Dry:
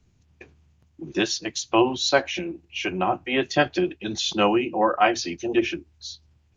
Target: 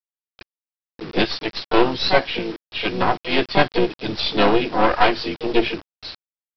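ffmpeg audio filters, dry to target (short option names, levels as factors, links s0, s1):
-filter_complex "[0:a]adynamicequalizer=threshold=0.0251:dfrequency=370:dqfactor=7.1:tfrequency=370:tqfactor=7.1:attack=5:release=100:ratio=0.375:range=2:mode=cutabove:tftype=bell,aeval=exprs='0.631*(cos(1*acos(clip(val(0)/0.631,-1,1)))-cos(1*PI/2))+0.0708*(cos(2*acos(clip(val(0)/0.631,-1,1)))-cos(2*PI/2))+0.0355*(cos(4*acos(clip(val(0)/0.631,-1,1)))-cos(4*PI/2))+0.0355*(cos(5*acos(clip(val(0)/0.631,-1,1)))-cos(5*PI/2))+0.0794*(cos(8*acos(clip(val(0)/0.631,-1,1)))-cos(8*PI/2))':c=same,asplit=4[s0][s1][s2][s3];[s1]asetrate=29433,aresample=44100,atempo=1.49831,volume=0.178[s4];[s2]asetrate=52444,aresample=44100,atempo=0.840896,volume=0.158[s5];[s3]asetrate=58866,aresample=44100,atempo=0.749154,volume=0.562[s6];[s0][s4][s5][s6]amix=inputs=4:normalize=0,aresample=11025,acrusher=bits=5:mix=0:aa=0.000001,aresample=44100"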